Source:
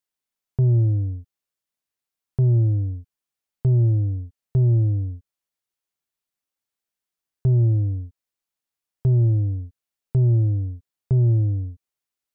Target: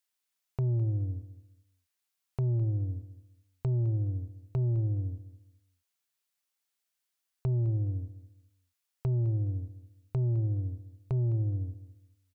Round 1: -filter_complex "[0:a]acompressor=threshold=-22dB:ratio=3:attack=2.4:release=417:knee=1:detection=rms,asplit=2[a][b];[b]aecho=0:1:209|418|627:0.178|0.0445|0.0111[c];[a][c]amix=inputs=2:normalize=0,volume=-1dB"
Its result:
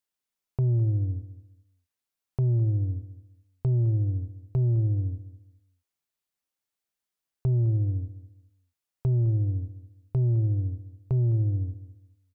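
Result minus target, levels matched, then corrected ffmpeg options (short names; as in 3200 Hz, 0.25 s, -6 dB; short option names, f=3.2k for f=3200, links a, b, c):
1000 Hz band -5.0 dB
-filter_complex "[0:a]acompressor=threshold=-22dB:ratio=3:attack=2.4:release=417:knee=1:detection=rms,tiltshelf=f=810:g=-5,asplit=2[a][b];[b]aecho=0:1:209|418|627:0.178|0.0445|0.0111[c];[a][c]amix=inputs=2:normalize=0,volume=-1dB"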